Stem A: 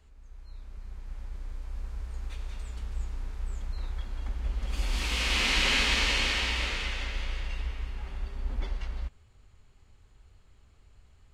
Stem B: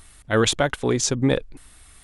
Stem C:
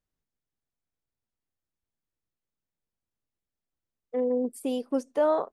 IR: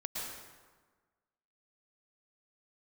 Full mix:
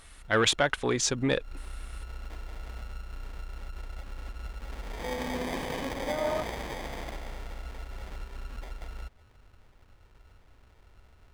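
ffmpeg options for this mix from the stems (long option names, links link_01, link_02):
-filter_complex "[0:a]volume=0dB[link_01];[1:a]volume=-8.5dB,asplit=2[link_02][link_03];[2:a]adelay=900,volume=-7.5dB,asplit=2[link_04][link_05];[link_05]volume=-7dB[link_06];[link_03]apad=whole_len=499917[link_07];[link_01][link_07]sidechaincompress=threshold=-39dB:ratio=8:attack=7.5:release=193[link_08];[link_08][link_04]amix=inputs=2:normalize=0,acrusher=samples=32:mix=1:aa=0.000001,acompressor=threshold=-35dB:ratio=12,volume=0dB[link_09];[3:a]atrim=start_sample=2205[link_10];[link_06][link_10]afir=irnorm=-1:irlink=0[link_11];[link_02][link_09][link_11]amix=inputs=3:normalize=0,asoftclip=type=tanh:threshold=-19dB,equalizer=frequency=1900:width=0.31:gain=9"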